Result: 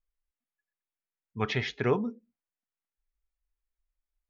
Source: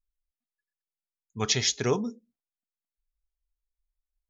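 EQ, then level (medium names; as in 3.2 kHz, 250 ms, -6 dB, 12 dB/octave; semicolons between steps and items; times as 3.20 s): four-pole ladder low-pass 2.9 kHz, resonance 25%; +5.5 dB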